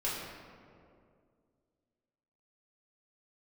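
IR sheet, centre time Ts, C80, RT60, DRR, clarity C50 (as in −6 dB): 101 ms, 2.0 dB, 2.3 s, −7.5 dB, 0.0 dB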